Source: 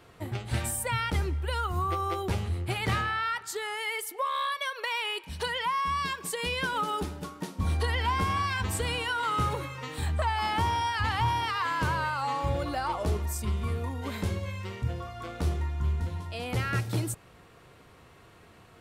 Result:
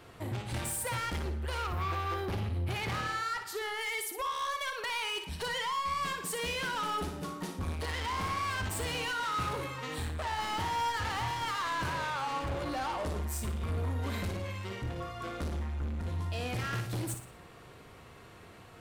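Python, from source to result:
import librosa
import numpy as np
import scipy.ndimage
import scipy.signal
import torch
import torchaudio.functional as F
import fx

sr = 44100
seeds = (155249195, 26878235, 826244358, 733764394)

y = fx.peak_eq(x, sr, hz=7400.0, db=-11.5, octaves=0.84, at=(1.63, 3.81))
y = 10.0 ** (-33.5 / 20.0) * np.tanh(y / 10.0 ** (-33.5 / 20.0))
y = fx.room_flutter(y, sr, wall_m=9.9, rt60_s=0.43)
y = F.gain(torch.from_numpy(y), 1.5).numpy()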